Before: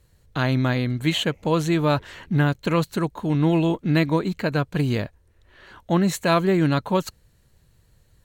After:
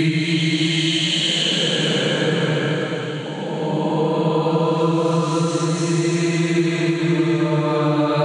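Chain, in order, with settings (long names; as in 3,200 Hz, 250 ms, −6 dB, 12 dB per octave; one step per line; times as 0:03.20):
extreme stretch with random phases 10×, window 0.25 s, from 0:01.06
downward compressor, threshold −21 dBFS, peak gain reduction 8 dB
feedback delay with all-pass diffusion 570 ms, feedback 57%, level −12 dB
brick-wall band-pass 110–9,900 Hz
level +6 dB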